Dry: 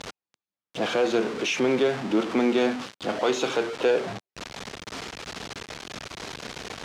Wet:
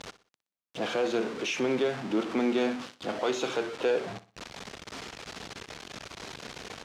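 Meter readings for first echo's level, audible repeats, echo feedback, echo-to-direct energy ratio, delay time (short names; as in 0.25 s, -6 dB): -16.0 dB, 3, 37%, -15.5 dB, 61 ms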